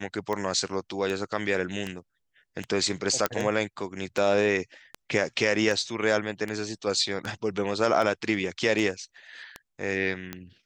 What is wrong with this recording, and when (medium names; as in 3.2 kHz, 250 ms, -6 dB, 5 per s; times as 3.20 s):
tick 78 rpm -18 dBFS
3.26 s: pop -8 dBFS